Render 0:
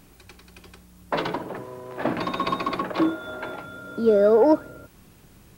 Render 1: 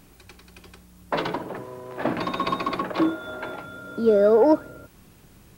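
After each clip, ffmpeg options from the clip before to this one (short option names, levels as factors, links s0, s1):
-af anull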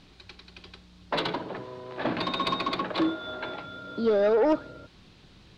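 -af "acrusher=bits=9:mix=0:aa=0.000001,lowpass=f=4000:t=q:w=2.9,aeval=exprs='0.447*(cos(1*acos(clip(val(0)/0.447,-1,1)))-cos(1*PI/2))+0.0501*(cos(5*acos(clip(val(0)/0.447,-1,1)))-cos(5*PI/2))':c=same,volume=0.473"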